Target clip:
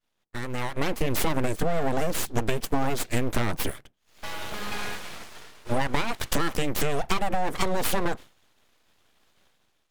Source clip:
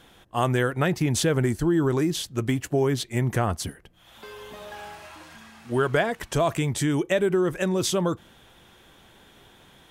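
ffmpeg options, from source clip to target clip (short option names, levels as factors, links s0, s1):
-af "acompressor=threshold=0.0316:ratio=6,agate=range=0.0224:threshold=0.01:ratio=3:detection=peak,aeval=exprs='abs(val(0))':c=same,dynaudnorm=f=180:g=7:m=3.98,volume=0.841"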